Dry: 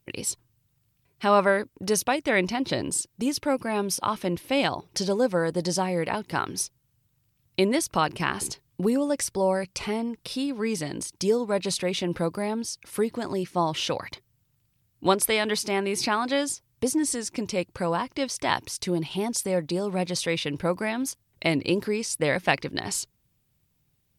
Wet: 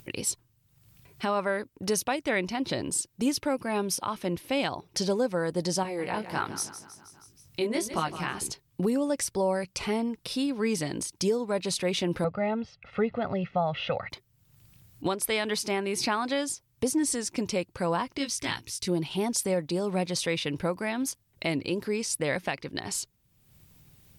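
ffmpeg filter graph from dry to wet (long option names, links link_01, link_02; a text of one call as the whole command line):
ffmpeg -i in.wav -filter_complex "[0:a]asettb=1/sr,asplit=3[link_01][link_02][link_03];[link_01]atrim=end=5.834[link_04];[link_02]atrim=start=5.83:end=8.38,asetpts=PTS-STARTPTS,afade=type=in:duration=0.004:curve=qsin,afade=type=out:start_time=2.546:duration=0.004:curve=qsin,flanger=delay=18:depth=5.6:speed=1.4,aecho=1:1:159|318|477|636|795:0.237|0.119|0.0593|0.0296|0.0148,atrim=end_sample=112455[link_05];[link_03]atrim=start=8.376[link_06];[link_04][link_05]acrossfade=duration=0.004:curve1=hsin:curve2=qsin[link_07];[link_07][link_06]acrossfade=duration=0.004:curve1=qsin:curve2=hsin,asettb=1/sr,asplit=3[link_08][link_09][link_10];[link_08]atrim=end=12.244[link_11];[link_09]atrim=start=12.24:end=14.1,asetpts=PTS-STARTPTS,afade=type=in:duration=0.004:curve=qsin,afade=type=out:start_time=1.856:duration=0.004:curve=qsin,lowpass=frequency=2900:width=0.5412,lowpass=frequency=2900:width=1.3066,aecho=1:1:1.5:0.91,atrim=end_sample=82026[link_12];[link_10]atrim=start=14.096[link_13];[link_11][link_12]acrossfade=duration=0.004:curve1=hsin:curve2=qsin[link_14];[link_14][link_13]acrossfade=duration=0.004:curve1=qsin:curve2=hsin,asettb=1/sr,asplit=3[link_15][link_16][link_17];[link_15]atrim=end=18.184[link_18];[link_16]atrim=start=18.18:end=18.88,asetpts=PTS-STARTPTS,afade=type=in:duration=0.004:curve=qsin,afade=type=out:start_time=0.696:duration=0.004:curve=qsin,equalizer=frequency=690:width=0.89:gain=-14,asplit=2[link_19][link_20];[link_20]adelay=18,volume=-4dB[link_21];[link_19][link_21]amix=inputs=2:normalize=0,atrim=end_sample=30870[link_22];[link_17]atrim=start=18.876[link_23];[link_18][link_22]acrossfade=duration=0.004:curve1=hsin:curve2=qsin[link_24];[link_24][link_23]acrossfade=duration=0.004:curve1=qsin:curve2=hsin,alimiter=limit=-16.5dB:level=0:latency=1:release=455,acompressor=mode=upward:threshold=-43dB:ratio=2.5" out.wav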